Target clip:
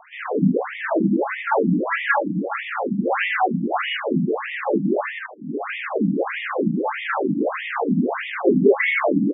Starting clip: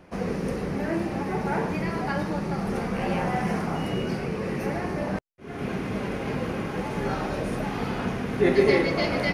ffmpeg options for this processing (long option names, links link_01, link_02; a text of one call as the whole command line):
ffmpeg -i in.wav -filter_complex "[0:a]asettb=1/sr,asplit=3[link_01][link_02][link_03];[link_01]atrim=end=1.824[link_04];[link_02]atrim=start=1.82:end=3.99,asetpts=PTS-STARTPTS,afade=type=in:duration=0.004:curve=qsin,afade=type=out:start_time=2.166:duration=0.004:curve=qsin,tiltshelf=frequency=970:gain=-4.5[link_05];[link_03]atrim=start=3.986[link_06];[link_04][link_05]acrossfade=duration=0.004:curve1=hsin:curve2=qsin[link_07];[link_07][link_06]acrossfade=duration=0.004:curve1=qsin:curve2=hsin,asplit=2[link_08][link_09];[link_09]aecho=0:1:76|152|228:0.668|0.154|0.0354[link_10];[link_08][link_10]amix=inputs=2:normalize=0,alimiter=level_in=14.5dB:limit=-1dB:release=50:level=0:latency=1,afftfilt=real='re*between(b*sr/1024,210*pow(2600/210,0.5+0.5*sin(2*PI*1.6*pts/sr))/1.41,210*pow(2600/210,0.5+0.5*sin(2*PI*1.6*pts/sr))*1.41)':imag='im*between(b*sr/1024,210*pow(2600/210,0.5+0.5*sin(2*PI*1.6*pts/sr))/1.41,210*pow(2600/210,0.5+0.5*sin(2*PI*1.6*pts/sr))*1.41)':win_size=1024:overlap=0.75,volume=-2dB" out.wav